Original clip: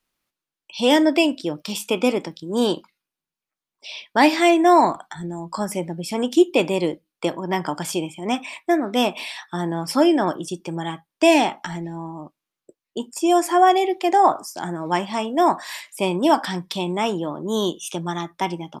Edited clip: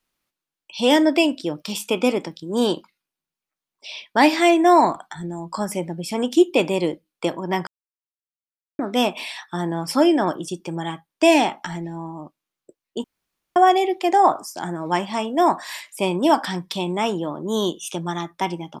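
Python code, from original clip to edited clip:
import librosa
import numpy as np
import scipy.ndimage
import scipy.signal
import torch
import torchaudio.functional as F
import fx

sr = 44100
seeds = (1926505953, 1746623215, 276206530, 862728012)

y = fx.edit(x, sr, fx.silence(start_s=7.67, length_s=1.12),
    fx.room_tone_fill(start_s=13.04, length_s=0.52), tone=tone)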